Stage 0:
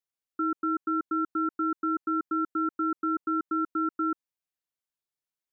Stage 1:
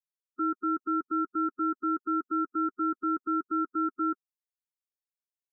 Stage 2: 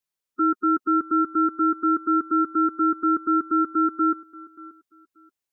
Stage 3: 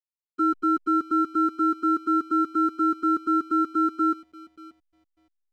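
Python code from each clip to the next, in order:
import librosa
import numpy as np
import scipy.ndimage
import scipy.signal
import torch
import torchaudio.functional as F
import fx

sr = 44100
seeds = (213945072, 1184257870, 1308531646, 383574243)

y1 = fx.bin_expand(x, sr, power=3.0)
y2 = fx.echo_feedback(y1, sr, ms=582, feedback_pct=24, wet_db=-21)
y2 = y2 * 10.0 ** (8.0 / 20.0)
y3 = fx.backlash(y2, sr, play_db=-42.5)
y3 = y3 * 10.0 ** (-1.5 / 20.0)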